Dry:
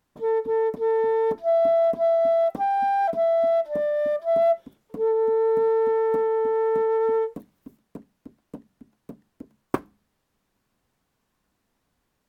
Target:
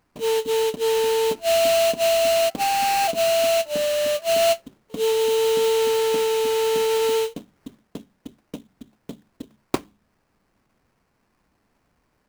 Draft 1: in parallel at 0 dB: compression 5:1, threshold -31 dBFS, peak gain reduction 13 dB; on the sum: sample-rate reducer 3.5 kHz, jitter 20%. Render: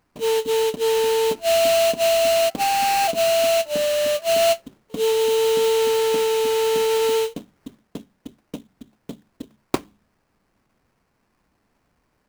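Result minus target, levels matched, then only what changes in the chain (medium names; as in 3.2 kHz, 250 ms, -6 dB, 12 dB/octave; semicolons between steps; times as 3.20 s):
compression: peak gain reduction -6 dB
change: compression 5:1, threshold -38.5 dBFS, peak gain reduction 19 dB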